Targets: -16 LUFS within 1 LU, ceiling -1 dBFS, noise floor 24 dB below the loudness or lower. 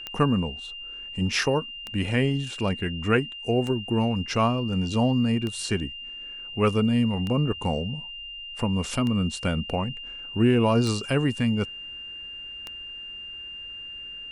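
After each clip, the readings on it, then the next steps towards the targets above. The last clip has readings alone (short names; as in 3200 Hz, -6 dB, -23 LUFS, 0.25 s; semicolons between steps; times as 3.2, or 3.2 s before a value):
clicks 8; steady tone 2800 Hz; tone level -36 dBFS; loudness -26.5 LUFS; peak -7.5 dBFS; loudness target -16.0 LUFS
-> de-click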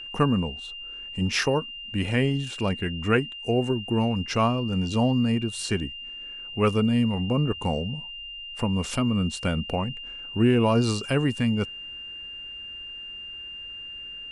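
clicks 0; steady tone 2800 Hz; tone level -36 dBFS
-> notch 2800 Hz, Q 30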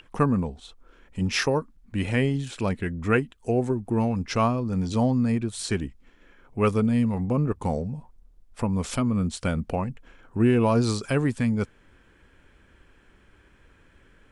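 steady tone none; loudness -25.5 LUFS; peak -8.0 dBFS; loudness target -16.0 LUFS
-> gain +9.5 dB; limiter -1 dBFS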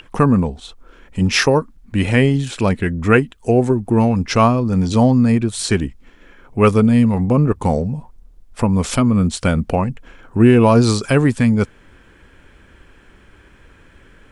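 loudness -16.0 LUFS; peak -1.0 dBFS; noise floor -49 dBFS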